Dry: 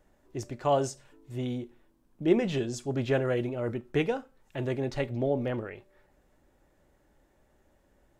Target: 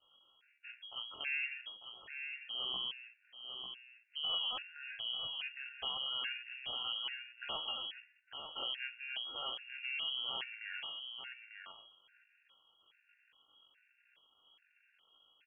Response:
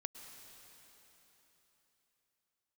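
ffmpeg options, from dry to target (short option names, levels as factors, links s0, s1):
-filter_complex "[0:a]aeval=exprs='if(lt(val(0),0),0.251*val(0),val(0))':c=same,tiltshelf=f=1300:g=-7,bandreject=f=52.84:t=h:w=4,bandreject=f=105.68:t=h:w=4,bandreject=f=158.52:t=h:w=4,bandreject=f=211.36:t=h:w=4,asplit=2[s0][s1];[s1]acompressor=threshold=0.00708:ratio=10,volume=1.41[s2];[s0][s2]amix=inputs=2:normalize=0,alimiter=level_in=1.06:limit=0.0631:level=0:latency=1:release=34,volume=0.944,lowpass=f=2800:t=q:w=0.5098,lowpass=f=2800:t=q:w=0.6013,lowpass=f=2800:t=q:w=0.9,lowpass=f=2800:t=q:w=2.563,afreqshift=-3300,atempo=0.53,asplit=2[s3][s4];[s4]aecho=0:1:897:0.447[s5];[s3][s5]amix=inputs=2:normalize=0,afftfilt=real='re*gt(sin(2*PI*1.2*pts/sr)*(1-2*mod(floor(b*sr/1024/1400),2)),0)':imag='im*gt(sin(2*PI*1.2*pts/sr)*(1-2*mod(floor(b*sr/1024/1400),2)),0)':win_size=1024:overlap=0.75,volume=0.794"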